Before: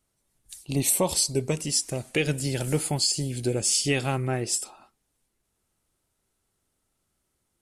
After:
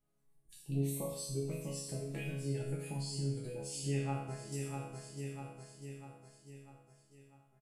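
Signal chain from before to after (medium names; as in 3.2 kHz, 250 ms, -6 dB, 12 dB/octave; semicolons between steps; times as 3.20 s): spectral gate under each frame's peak -30 dB strong; 4.18–4.62 s: level held to a coarse grid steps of 13 dB; peaking EQ 6.2 kHz -10.5 dB 2.7 oct; feedback delay 647 ms, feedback 52%, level -12.5 dB; compression 3:1, threshold -36 dBFS, peak gain reduction 12.5 dB; bass shelf 190 Hz +4.5 dB; chord resonator C#3 minor, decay 0.78 s; trim +15 dB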